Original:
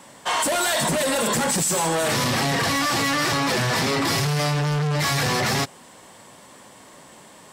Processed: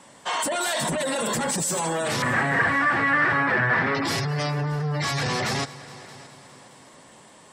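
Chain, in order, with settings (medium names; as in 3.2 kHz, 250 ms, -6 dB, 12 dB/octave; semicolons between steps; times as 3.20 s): spectral gate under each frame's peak -25 dB strong; 2.22–3.95 s: resonant low-pass 1.7 kHz, resonance Q 3.7; multi-head delay 207 ms, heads all three, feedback 46%, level -22.5 dB; trim -3.5 dB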